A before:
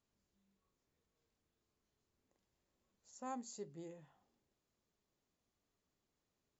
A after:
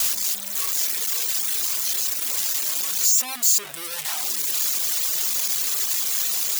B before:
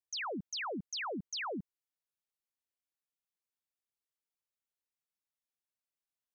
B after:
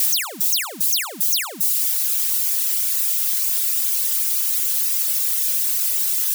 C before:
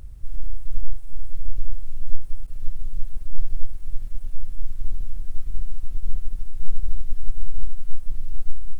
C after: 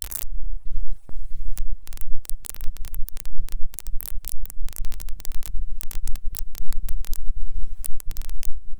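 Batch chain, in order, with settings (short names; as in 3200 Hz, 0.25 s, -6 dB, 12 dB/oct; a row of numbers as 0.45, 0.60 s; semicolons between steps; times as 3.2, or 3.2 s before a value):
switching spikes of -10.5 dBFS; gate with hold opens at -18 dBFS; reverb removal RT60 0.98 s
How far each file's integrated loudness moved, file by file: +28.5, +21.5, +2.5 LU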